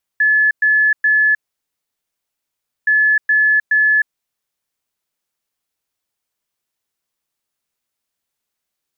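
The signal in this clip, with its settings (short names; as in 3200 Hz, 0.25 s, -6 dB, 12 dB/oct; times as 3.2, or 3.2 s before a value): beep pattern sine 1720 Hz, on 0.31 s, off 0.11 s, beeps 3, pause 1.52 s, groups 2, -10 dBFS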